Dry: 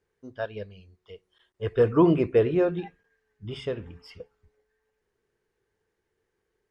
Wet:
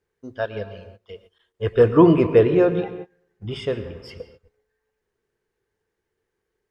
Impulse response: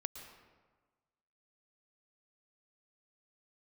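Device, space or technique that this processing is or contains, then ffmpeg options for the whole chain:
keyed gated reverb: -filter_complex "[0:a]asplit=3[link_01][link_02][link_03];[1:a]atrim=start_sample=2205[link_04];[link_02][link_04]afir=irnorm=-1:irlink=0[link_05];[link_03]apad=whole_len=295683[link_06];[link_05][link_06]sidechaingate=range=-25dB:threshold=-56dB:ratio=16:detection=peak,volume=4dB[link_07];[link_01][link_07]amix=inputs=2:normalize=0,volume=-1dB"

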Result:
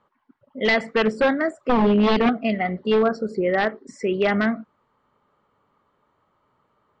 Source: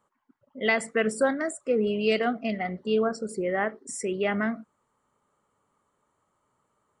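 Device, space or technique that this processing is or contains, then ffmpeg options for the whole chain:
synthesiser wavefolder: -filter_complex "[0:a]asettb=1/sr,asplit=3[link_01][link_02][link_03];[link_01]atrim=end=1.694[link_04];[link_02]atrim=start=1.69:end=2.29,asetpts=PTS-STARTPTS,afade=type=in:duration=0.004:curve=qsin,afade=type=out:start_time=0.596:duration=0.004:curve=qsin,equalizer=frequency=100:width_type=o:width=0.67:gain=4,equalizer=frequency=250:width_type=o:width=0.67:gain=11,equalizer=frequency=2500:width_type=o:width=0.67:gain=-5[link_05];[link_03]atrim=start=2.286[link_06];[link_04][link_05]acrossfade=duration=0.004:curve1=hsin:curve2=qsin[link_07];[link_07][link_06]acrossfade=duration=0.004:curve1=qsin:curve2=hsin,aeval=exprs='0.119*(abs(mod(val(0)/0.119+3,4)-2)-1)':channel_layout=same,lowpass=frequency=4400:width=0.5412,lowpass=frequency=4400:width=1.3066,volume=6.5dB"

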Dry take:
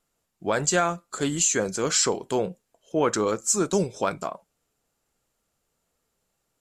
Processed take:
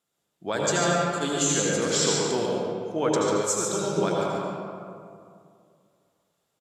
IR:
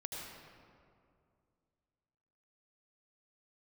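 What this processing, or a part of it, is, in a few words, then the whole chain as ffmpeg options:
PA in a hall: -filter_complex "[0:a]highpass=110,equalizer=frequency=3500:width_type=o:width=0.25:gain=7.5,aecho=1:1:143:0.447[link_01];[1:a]atrim=start_sample=2205[link_02];[link_01][link_02]afir=irnorm=-1:irlink=0,asettb=1/sr,asplit=3[link_03][link_04][link_05];[link_03]atrim=end=3.414[link_06];[link_04]atrim=start=3.41:end=3.97,asetpts=PTS-STARTPTS,afade=type=in:duration=0.004:curve=qsin,afade=type=out:start_time=0.556:duration=0.004:curve=qsin,equalizer=frequency=270:width_type=o:width=1.4:gain=-9[link_07];[link_05]atrim=start=3.966[link_08];[link_06][link_07]acrossfade=duration=0.004:curve1=hsin:curve2=qsin[link_09];[link_09][link_08]acrossfade=duration=0.004:curve1=qsin:curve2=hsin"

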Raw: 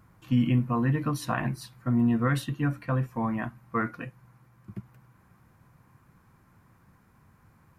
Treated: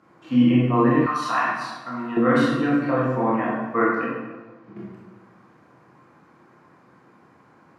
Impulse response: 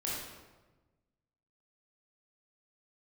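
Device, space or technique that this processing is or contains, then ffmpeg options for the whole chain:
supermarket ceiling speaker: -filter_complex "[0:a]equalizer=frequency=430:width_type=o:width=2.7:gain=5.5,asettb=1/sr,asplit=3[link_01][link_02][link_03];[link_01]atrim=end=4.014[link_04];[link_02]atrim=start=4.01:end=4.77,asetpts=PTS-STARTPTS,afade=type=in:duration=0.004:curve=qsin,afade=type=out:start_time=0.756:duration=0.004:curve=qsin,lowpass=5100[link_05];[link_03]atrim=start=4.766[link_06];[link_04][link_05]acrossfade=duration=0.004:curve1=hsin:curve2=qsin[link_07];[link_07][link_06]acrossfade=duration=0.004:curve1=qsin:curve2=hsin,highpass=270,lowpass=5800[link_08];[1:a]atrim=start_sample=2205[link_09];[link_08][link_09]afir=irnorm=-1:irlink=0,asettb=1/sr,asplit=3[link_10][link_11][link_12];[link_10]atrim=end=1.064[link_13];[link_11]atrim=start=1.06:end=2.17,asetpts=PTS-STARTPTS,afade=type=in:duration=0.004:curve=qsin,afade=type=out:start_time=1.106:duration=0.004:curve=qsin,lowshelf=frequency=700:width_type=q:width=1.5:gain=-12.5[link_14];[link_12]atrim=start=2.166[link_15];[link_13][link_14]acrossfade=duration=0.004:curve1=hsin:curve2=qsin[link_16];[link_16][link_15]acrossfade=duration=0.004:curve1=qsin:curve2=hsin,volume=3.5dB"

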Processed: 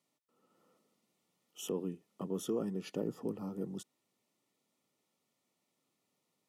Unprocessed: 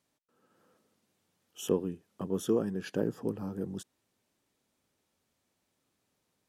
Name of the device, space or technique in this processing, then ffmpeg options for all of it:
PA system with an anti-feedback notch: -af "highpass=frequency=130:width=0.5412,highpass=frequency=130:width=1.3066,asuperstop=centerf=1600:order=12:qfactor=5.8,alimiter=limit=-22dB:level=0:latency=1:release=44,volume=-3dB"

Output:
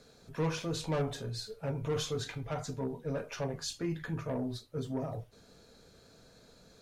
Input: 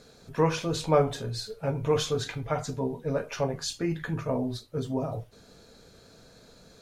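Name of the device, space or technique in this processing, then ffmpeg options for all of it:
one-band saturation: -filter_complex "[0:a]acrossover=split=290|4600[link_01][link_02][link_03];[link_02]asoftclip=type=tanh:threshold=-26.5dB[link_04];[link_01][link_04][link_03]amix=inputs=3:normalize=0,volume=-5dB"

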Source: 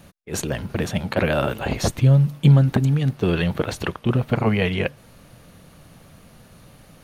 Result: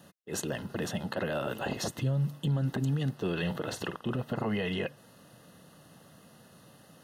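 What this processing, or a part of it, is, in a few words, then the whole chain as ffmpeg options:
PA system with an anti-feedback notch: -filter_complex "[0:a]asettb=1/sr,asplit=3[link_01][link_02][link_03];[link_01]atrim=end=3.394[link_04];[link_02]atrim=start=3.39:end=4.13,asetpts=PTS-STARTPTS,afade=type=in:duration=0.004:curve=qsin,afade=type=out:start_time=0.736:duration=0.004:curve=qsin,asplit=2[link_05][link_06];[link_06]adelay=49,volume=-12dB[link_07];[link_05][link_07]amix=inputs=2:normalize=0,atrim=end_sample=32634[link_08];[link_03]atrim=start=4.126[link_09];[link_04][link_08]acrossfade=duration=0.004:curve1=hsin:curve2=qsin[link_10];[link_10][link_09]acrossfade=duration=0.004:curve1=qsin:curve2=hsin,highpass=150,asuperstop=centerf=2300:order=20:qfactor=6,alimiter=limit=-17dB:level=0:latency=1:release=53,volume=-5.5dB"

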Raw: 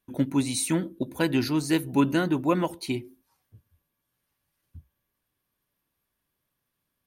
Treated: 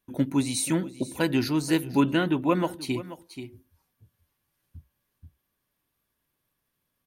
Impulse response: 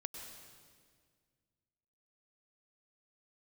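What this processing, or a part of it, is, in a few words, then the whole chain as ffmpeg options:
ducked delay: -filter_complex "[0:a]asplit=3[link_01][link_02][link_03];[link_02]adelay=481,volume=-4dB[link_04];[link_03]apad=whole_len=332955[link_05];[link_04][link_05]sidechaincompress=threshold=-37dB:ratio=4:attack=8.5:release=872[link_06];[link_01][link_06]amix=inputs=2:normalize=0,asettb=1/sr,asplit=3[link_07][link_08][link_09];[link_07]atrim=end=2.034[link_10];[link_08]atrim=start=2.03:end=2.52,asetpts=PTS-STARTPTS,afade=type=in:duration=0.004:curve=qsin,afade=type=out:start_time=0.486:duration=0.004:curve=qsin,highshelf=frequency=4000:width_type=q:width=3:gain=-6.5[link_11];[link_09]atrim=start=2.516[link_12];[link_10][link_11]acrossfade=duration=0.004:curve1=hsin:curve2=qsin[link_13];[link_13][link_12]acrossfade=duration=0.004:curve1=qsin:curve2=hsin"

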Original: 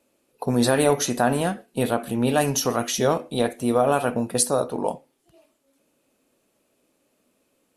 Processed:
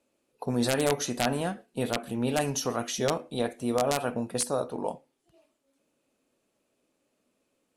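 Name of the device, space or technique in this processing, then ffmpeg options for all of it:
overflowing digital effects unit: -af "aeval=exprs='(mod(2.51*val(0)+1,2)-1)/2.51':channel_layout=same,lowpass=10000,volume=-6.5dB"

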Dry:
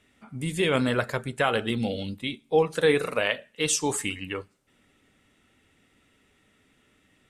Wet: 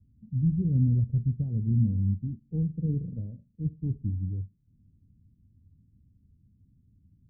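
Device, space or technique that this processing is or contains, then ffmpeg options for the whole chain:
the neighbour's flat through the wall: -af "lowpass=frequency=180:width=0.5412,lowpass=frequency=180:width=1.3066,equalizer=frequency=85:width_type=o:width=0.98:gain=7,volume=7.5dB"

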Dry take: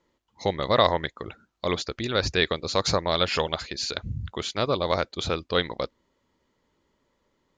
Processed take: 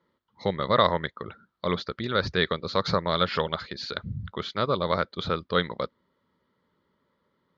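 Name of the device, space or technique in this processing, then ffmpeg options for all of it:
guitar cabinet: -af "highpass=91,equalizer=frequency=180:width_type=q:width=4:gain=5,equalizer=frequency=310:width_type=q:width=4:gain=-5,equalizer=frequency=740:width_type=q:width=4:gain=-7,equalizer=frequency=1300:width_type=q:width=4:gain=5,equalizer=frequency=2600:width_type=q:width=4:gain=-10,lowpass=frequency=4100:width=0.5412,lowpass=frequency=4100:width=1.3066"

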